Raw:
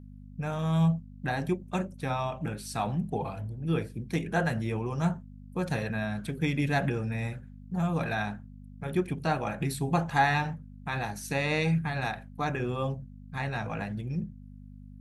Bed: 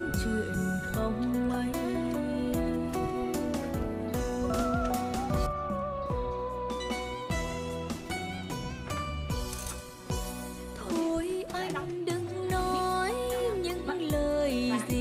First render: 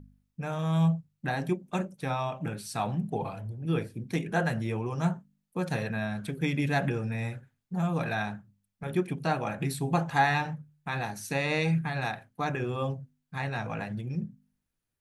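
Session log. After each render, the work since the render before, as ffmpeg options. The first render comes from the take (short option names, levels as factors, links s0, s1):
-af "bandreject=f=50:t=h:w=4,bandreject=f=100:t=h:w=4,bandreject=f=150:t=h:w=4,bandreject=f=200:t=h:w=4,bandreject=f=250:t=h:w=4"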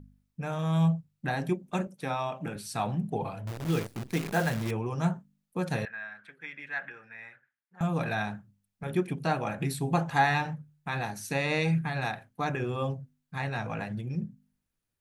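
-filter_complex "[0:a]asettb=1/sr,asplit=3[s0][s1][s2];[s0]atrim=end=1.874[s3];[s1]atrim=start=1.87:end=2.56,asetpts=PTS-STARTPTS,afade=t=in:d=0.004:c=qsin,afade=t=out:st=0.686:d=0.004:c=qsin,highpass=160[s4];[s2]atrim=start=2.556[s5];[s3][s4]acrossfade=d=0.004:c1=hsin:c2=qsin[s6];[s6][s5]acrossfade=d=0.004:c1=qsin:c2=hsin,asettb=1/sr,asplit=3[s7][s8][s9];[s7]atrim=end=3.474[s10];[s8]atrim=start=3.47:end=4.71,asetpts=PTS-STARTPTS,afade=t=in:d=0.004:c=qsin,afade=t=out:st=1.236:d=0.004:c=qsin,acrusher=bits=7:dc=4:mix=0:aa=0.000001[s11];[s9]atrim=start=4.706[s12];[s10][s11]acrossfade=d=0.004:c1=hsin:c2=qsin[s13];[s13][s12]acrossfade=d=0.004:c1=qsin:c2=hsin,asettb=1/sr,asplit=3[s14][s15][s16];[s14]atrim=end=5.854[s17];[s15]atrim=start=5.85:end=7.81,asetpts=PTS-STARTPTS,afade=t=in:d=0.004:c=qsin,afade=t=out:st=1.956:d=0.004:c=qsin,bandpass=f=1700:t=q:w=2.8[s18];[s16]atrim=start=7.806[s19];[s17][s18]acrossfade=d=0.004:c1=hsin:c2=qsin[s20];[s20][s19]acrossfade=d=0.004:c1=qsin:c2=hsin"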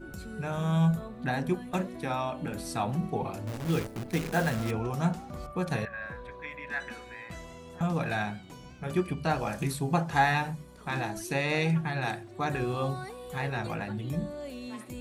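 -filter_complex "[1:a]volume=0.266[s0];[0:a][s0]amix=inputs=2:normalize=0"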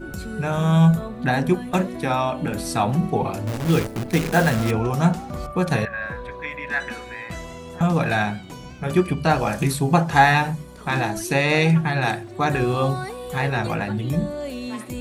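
-af "volume=2.99"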